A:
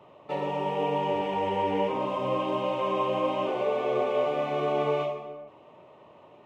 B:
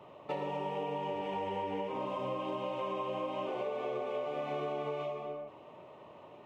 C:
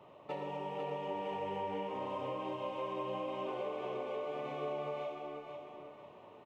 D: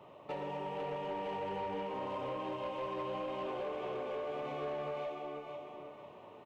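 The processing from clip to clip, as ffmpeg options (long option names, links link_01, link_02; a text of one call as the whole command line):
ffmpeg -i in.wav -af "acompressor=threshold=-33dB:ratio=10" out.wav
ffmpeg -i in.wav -af "aecho=1:1:495|990|1485|1980:0.501|0.165|0.0546|0.018,volume=-4dB" out.wav
ffmpeg -i in.wav -af "asoftclip=type=tanh:threshold=-34dB,volume=2dB" out.wav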